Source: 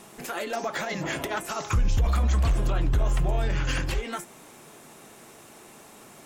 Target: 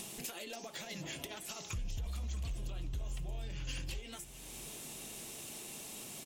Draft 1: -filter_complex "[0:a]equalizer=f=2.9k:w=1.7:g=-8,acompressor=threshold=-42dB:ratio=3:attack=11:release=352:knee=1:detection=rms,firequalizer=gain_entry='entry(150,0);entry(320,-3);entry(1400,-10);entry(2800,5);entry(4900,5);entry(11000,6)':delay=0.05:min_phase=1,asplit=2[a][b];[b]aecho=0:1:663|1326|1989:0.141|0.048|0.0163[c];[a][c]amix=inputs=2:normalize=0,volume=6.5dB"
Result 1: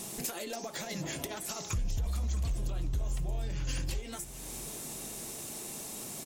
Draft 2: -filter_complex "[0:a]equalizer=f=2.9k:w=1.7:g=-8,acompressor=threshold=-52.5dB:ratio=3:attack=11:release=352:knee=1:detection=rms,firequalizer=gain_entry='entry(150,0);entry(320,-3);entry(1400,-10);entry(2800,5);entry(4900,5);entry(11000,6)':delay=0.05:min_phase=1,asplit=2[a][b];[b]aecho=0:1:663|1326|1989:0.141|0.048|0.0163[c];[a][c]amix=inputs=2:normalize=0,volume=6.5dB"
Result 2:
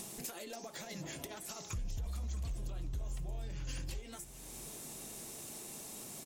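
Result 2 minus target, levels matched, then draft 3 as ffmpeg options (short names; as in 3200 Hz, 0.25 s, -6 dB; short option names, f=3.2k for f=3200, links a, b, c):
4000 Hz band -3.5 dB
-filter_complex "[0:a]acompressor=threshold=-52.5dB:ratio=3:attack=11:release=352:knee=1:detection=rms,firequalizer=gain_entry='entry(150,0);entry(320,-3);entry(1400,-10);entry(2800,5);entry(4900,5);entry(11000,6)':delay=0.05:min_phase=1,asplit=2[a][b];[b]aecho=0:1:663|1326|1989:0.141|0.048|0.0163[c];[a][c]amix=inputs=2:normalize=0,volume=6.5dB"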